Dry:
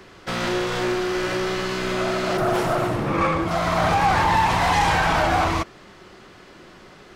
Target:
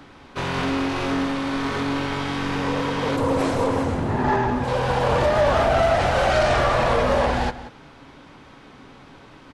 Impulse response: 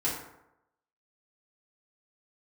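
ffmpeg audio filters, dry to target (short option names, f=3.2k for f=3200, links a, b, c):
-filter_complex "[0:a]asetrate=33075,aresample=44100,asplit=2[a][b];[b]adelay=180.8,volume=-14dB,highshelf=f=4k:g=-4.07[c];[a][c]amix=inputs=2:normalize=0"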